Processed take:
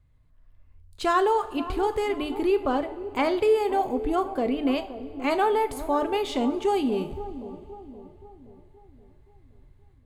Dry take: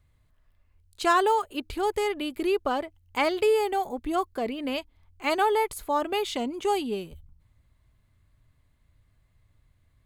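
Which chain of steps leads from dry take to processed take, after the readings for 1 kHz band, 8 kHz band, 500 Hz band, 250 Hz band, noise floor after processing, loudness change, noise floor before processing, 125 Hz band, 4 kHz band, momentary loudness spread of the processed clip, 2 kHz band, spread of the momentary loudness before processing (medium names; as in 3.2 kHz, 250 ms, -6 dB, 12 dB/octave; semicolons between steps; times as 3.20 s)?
+0.5 dB, -4.5 dB, +2.0 dB, +5.0 dB, -58 dBFS, +1.5 dB, -67 dBFS, no reading, -2.5 dB, 15 LU, -2.0 dB, 10 LU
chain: tilt EQ -2 dB/octave; in parallel at -1 dB: peak limiter -23 dBFS, peak gain reduction 11 dB; on the sum: level rider gain up to 5 dB; bass shelf 140 Hz -3 dB; on a send: bucket-brigade echo 523 ms, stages 4096, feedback 47%, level -13 dB; on the sum: two-slope reverb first 0.41 s, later 3.3 s, from -18 dB, DRR 8.5 dB; trim -8 dB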